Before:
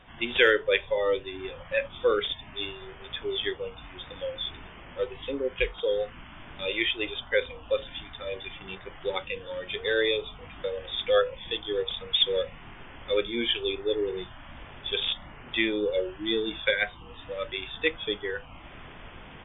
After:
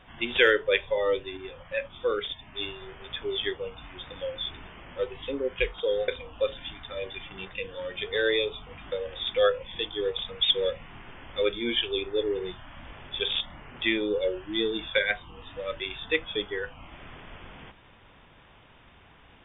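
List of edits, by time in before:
1.37–2.55 s: gain -3.5 dB
6.08–7.38 s: delete
8.83–9.25 s: delete

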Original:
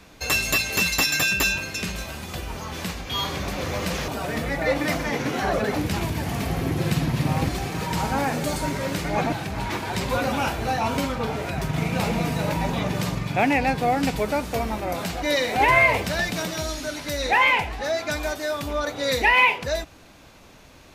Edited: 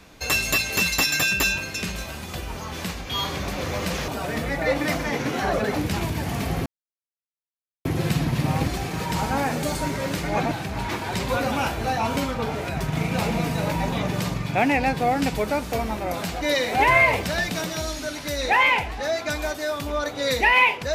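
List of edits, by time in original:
6.66 s: insert silence 1.19 s

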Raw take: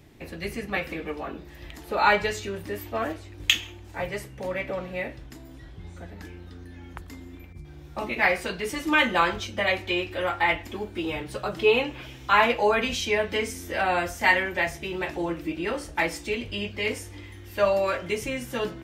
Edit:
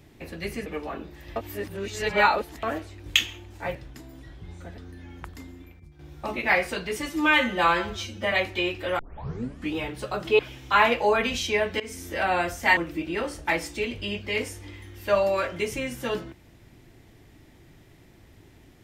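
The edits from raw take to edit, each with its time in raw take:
0.66–1.00 s: delete
1.70–2.97 s: reverse
4.09–5.11 s: delete
6.14–6.51 s: delete
7.15–7.72 s: fade out, to -10.5 dB
8.82–9.64 s: stretch 1.5×
10.31 s: tape start 0.77 s
11.71–11.97 s: delete
13.38–13.68 s: fade in equal-power, from -19.5 dB
14.35–15.27 s: delete

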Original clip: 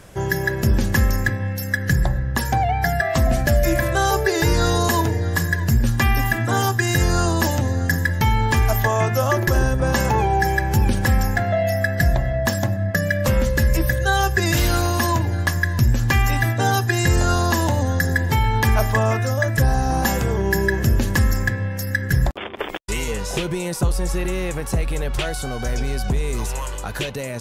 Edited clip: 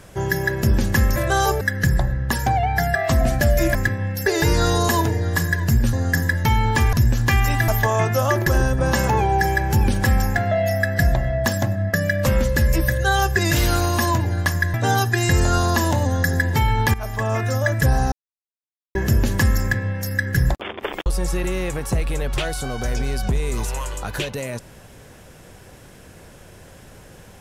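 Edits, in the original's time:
1.16–1.67 s: swap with 3.81–4.26 s
5.93–7.69 s: delete
15.75–16.50 s: move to 8.69 s
18.70–19.28 s: fade in linear, from -16 dB
19.88–20.71 s: mute
22.82–23.87 s: delete

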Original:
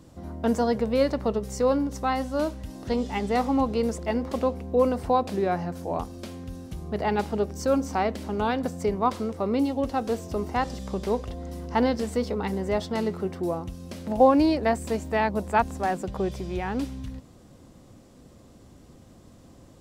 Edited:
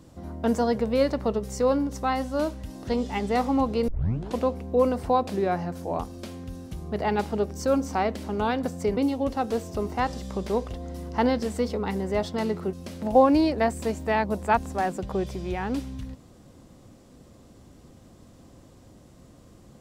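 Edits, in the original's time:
3.88 s: tape start 0.50 s
8.97–9.54 s: delete
13.30–13.78 s: delete

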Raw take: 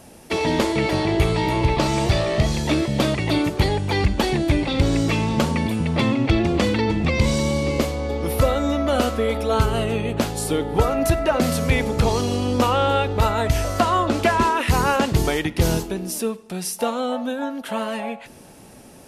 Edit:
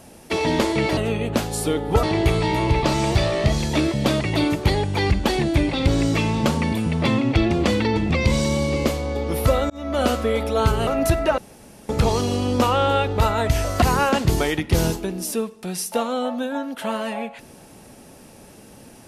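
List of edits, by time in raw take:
8.64–8.97 s: fade in
9.81–10.87 s: move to 0.97 s
11.38–11.89 s: room tone
13.82–14.69 s: delete

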